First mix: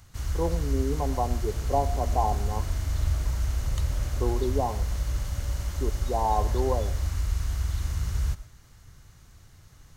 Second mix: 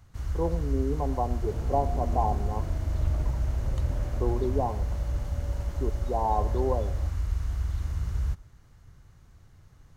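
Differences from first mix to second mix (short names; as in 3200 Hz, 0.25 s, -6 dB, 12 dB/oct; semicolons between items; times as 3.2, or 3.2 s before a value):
first sound: send -11.0 dB; second sound +6.0 dB; master: add high shelf 2200 Hz -10.5 dB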